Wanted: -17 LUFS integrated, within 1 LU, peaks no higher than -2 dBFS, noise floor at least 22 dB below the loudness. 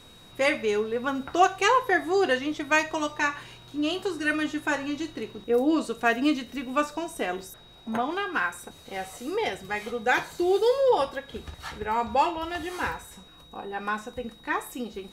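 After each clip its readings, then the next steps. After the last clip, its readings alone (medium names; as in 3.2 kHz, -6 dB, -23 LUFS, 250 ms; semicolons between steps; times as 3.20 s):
steady tone 3.8 kHz; tone level -52 dBFS; loudness -27.0 LUFS; peak level -9.0 dBFS; loudness target -17.0 LUFS
-> band-stop 3.8 kHz, Q 30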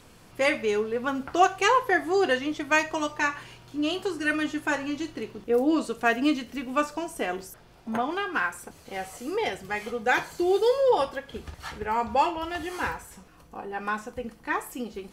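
steady tone not found; loudness -27.0 LUFS; peak level -9.0 dBFS; loudness target -17.0 LUFS
-> trim +10 dB; peak limiter -2 dBFS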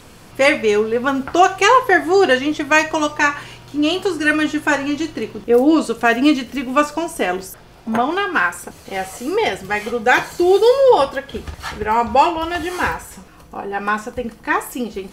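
loudness -17.0 LUFS; peak level -2.0 dBFS; noise floor -43 dBFS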